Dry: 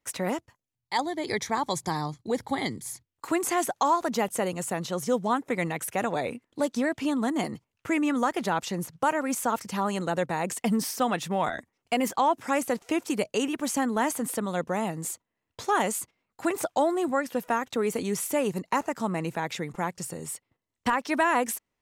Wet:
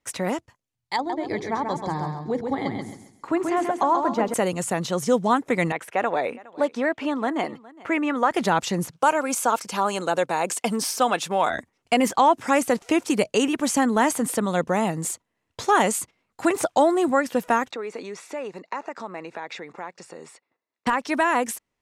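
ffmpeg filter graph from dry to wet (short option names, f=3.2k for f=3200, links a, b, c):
-filter_complex "[0:a]asettb=1/sr,asplit=3[a][b][c];[a]atrim=end=0.964[d];[b]atrim=start=0.96:end=4.34,asetpts=PTS-STARTPTS,afade=t=in:d=0.004:c=qsin,afade=t=out:st=3.376:d=0.004:c=qsin,lowpass=f=1.1k:p=1,bandreject=f=60:t=h:w=6,bandreject=f=120:t=h:w=6,bandreject=f=180:t=h:w=6,bandreject=f=240:t=h:w=6,bandreject=f=300:t=h:w=6,bandreject=f=360:t=h:w=6,bandreject=f=420:t=h:w=6,bandreject=f=480:t=h:w=6,aecho=1:1:134|268|402|536:0.562|0.169|0.0506|0.0152,atrim=end_sample=149058[e];[c]atrim=start=4.336[f];[d][e]acrossfade=d=0.004:c1=hsin:c2=qsin[g];[g][f]acrossfade=d=0.004:c1=qsin:c2=hsin,asettb=1/sr,asplit=3[h][i][j];[h]atrim=end=5.724[k];[i]atrim=start=5.72:end=8.31,asetpts=PTS-STARTPTS,afade=t=in:d=0.004:c=qsin,afade=t=out:st=2.586:d=0.004:c=qsin,bass=f=250:g=-15,treble=f=4k:g=-15,aecho=1:1:413:0.0841,atrim=end_sample=114219[l];[j]atrim=start=8.306[m];[k][l]acrossfade=d=0.004:c1=hsin:c2=qsin[n];[n][m]acrossfade=d=0.004:c1=qsin:c2=hsin,asettb=1/sr,asplit=3[o][p][q];[o]atrim=end=8.914[r];[p]atrim=start=8.91:end=11.5,asetpts=PTS-STARTPTS,afade=t=in:d=0.004:c=qsin,afade=t=out:st=2.586:d=0.004:c=qsin,highpass=41,bass=f=250:g=-13,treble=f=4k:g=1,bandreject=f=1.9k:w=8.2[s];[q]atrim=start=11.496[t];[r][s]acrossfade=d=0.004:c1=hsin:c2=qsin[u];[u][t]acrossfade=d=0.004:c1=qsin:c2=hsin,asettb=1/sr,asplit=3[v][w][x];[v]atrim=end=17.714[y];[w]atrim=start=17.71:end=20.87,asetpts=PTS-STARTPTS,afade=t=in:d=0.004:c=qsin,afade=t=out:st=3.156:d=0.004:c=qsin,bandreject=f=3.1k:w=6.6,acompressor=threshold=-33dB:ratio=3:attack=3.2:release=140:knee=1:detection=peak,highpass=380,lowpass=4.1k[z];[x]atrim=start=20.866[aa];[y][z]acrossfade=d=0.004:c1=hsin:c2=qsin[ab];[ab][aa]acrossfade=d=0.004:c1=qsin:c2=hsin,lowpass=11k,dynaudnorm=f=900:g=9:m=3dB,volume=3dB"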